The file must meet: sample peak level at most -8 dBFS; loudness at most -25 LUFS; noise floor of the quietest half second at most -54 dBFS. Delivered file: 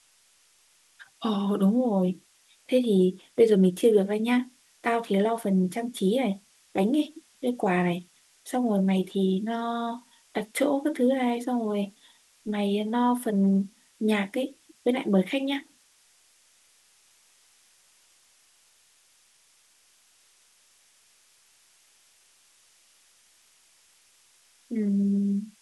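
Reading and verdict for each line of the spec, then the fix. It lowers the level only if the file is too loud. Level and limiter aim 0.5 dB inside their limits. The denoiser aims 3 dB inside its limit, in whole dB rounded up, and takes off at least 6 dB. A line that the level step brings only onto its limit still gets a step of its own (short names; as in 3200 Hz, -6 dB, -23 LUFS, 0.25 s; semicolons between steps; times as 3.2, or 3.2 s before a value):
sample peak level -9.5 dBFS: OK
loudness -26.0 LUFS: OK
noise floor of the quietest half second -63 dBFS: OK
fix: none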